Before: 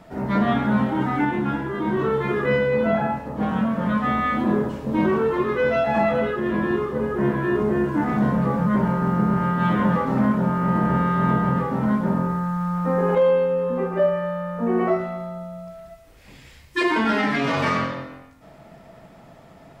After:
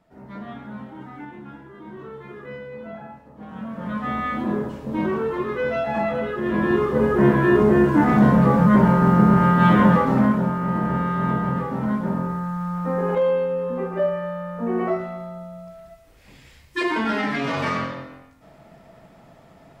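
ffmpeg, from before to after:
ffmpeg -i in.wav -af "volume=5.5dB,afade=type=in:start_time=3.46:duration=0.72:silence=0.237137,afade=type=in:start_time=6.27:duration=0.76:silence=0.354813,afade=type=out:start_time=9.8:duration=0.78:silence=0.398107" out.wav

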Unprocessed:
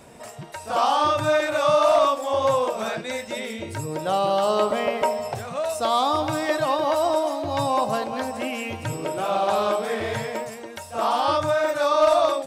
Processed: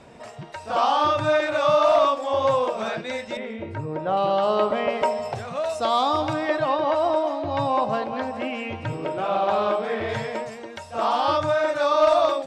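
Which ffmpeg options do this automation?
ffmpeg -i in.wav -af "asetnsamples=nb_out_samples=441:pad=0,asendcmd='3.37 lowpass f 1900;4.17 lowpass f 3400;4.89 lowpass f 5900;6.33 lowpass f 3300;10.09 lowpass f 5500',lowpass=5000" out.wav

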